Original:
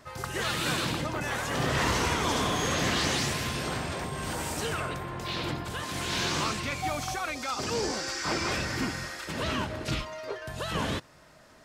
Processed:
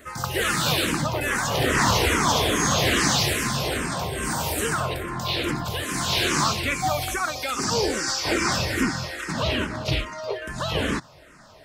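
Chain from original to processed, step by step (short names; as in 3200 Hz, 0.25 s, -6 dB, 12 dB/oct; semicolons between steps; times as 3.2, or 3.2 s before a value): high shelf 10000 Hz +8 dB, from 8.83 s -4.5 dB; endless phaser -2.4 Hz; gain +9 dB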